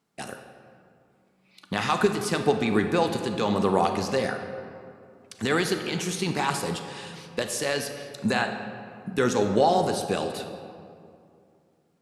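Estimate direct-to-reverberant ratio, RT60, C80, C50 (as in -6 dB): 6.0 dB, 2.4 s, 8.0 dB, 7.0 dB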